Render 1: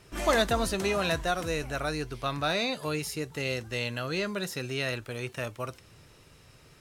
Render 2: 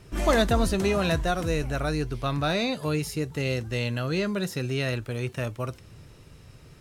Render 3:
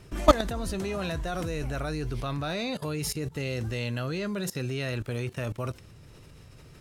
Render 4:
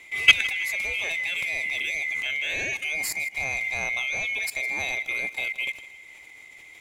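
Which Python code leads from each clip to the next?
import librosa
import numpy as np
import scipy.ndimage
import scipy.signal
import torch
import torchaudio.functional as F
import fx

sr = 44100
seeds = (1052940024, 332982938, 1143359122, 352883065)

y1 = fx.low_shelf(x, sr, hz=350.0, db=9.5)
y2 = fx.level_steps(y1, sr, step_db=19)
y2 = y2 * 10.0 ** (7.0 / 20.0)
y3 = fx.band_swap(y2, sr, width_hz=2000)
y3 = fx.echo_feedback(y3, sr, ms=159, feedback_pct=37, wet_db=-17)
y3 = y3 * 10.0 ** (2.5 / 20.0)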